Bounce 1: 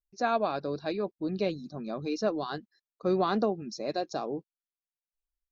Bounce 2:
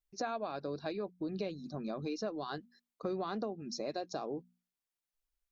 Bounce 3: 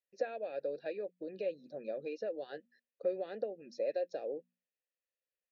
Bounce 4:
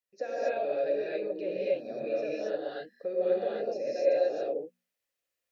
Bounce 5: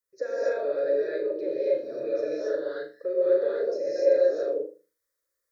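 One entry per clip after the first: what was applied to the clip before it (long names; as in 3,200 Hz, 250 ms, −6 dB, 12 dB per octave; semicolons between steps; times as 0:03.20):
mains-hum notches 60/120/180/240 Hz; downward compressor 4 to 1, threshold −38 dBFS, peak gain reduction 13.5 dB; level +2 dB
formant filter e; level +9.5 dB
reverb whose tail is shaped and stops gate 300 ms rising, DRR −8 dB
phaser with its sweep stopped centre 750 Hz, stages 6; on a send: flutter between parallel walls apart 6.7 metres, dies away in 0.33 s; on the sum: level +5 dB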